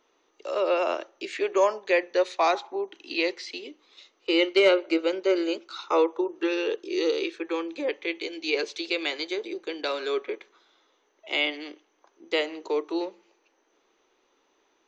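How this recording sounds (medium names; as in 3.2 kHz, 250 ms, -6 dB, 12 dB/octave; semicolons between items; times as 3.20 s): noise floor -69 dBFS; spectral tilt -5.0 dB/octave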